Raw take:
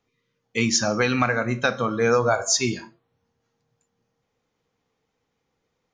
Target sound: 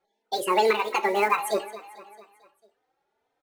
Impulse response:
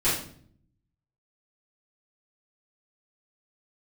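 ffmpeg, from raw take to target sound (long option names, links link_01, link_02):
-filter_complex "[0:a]lowpass=frequency=1000:poles=1,lowshelf=frequency=180:width_type=q:width=1.5:gain=-9.5,aecho=1:1:387|774|1161|1548|1935:0.141|0.0777|0.0427|0.0235|0.0129,acrusher=bits=6:mode=log:mix=0:aa=0.000001,asetrate=76440,aresample=44100,asplit=2[link_01][link_02];[link_02]adelay=3.2,afreqshift=2[link_03];[link_01][link_03]amix=inputs=2:normalize=1,volume=3.5dB"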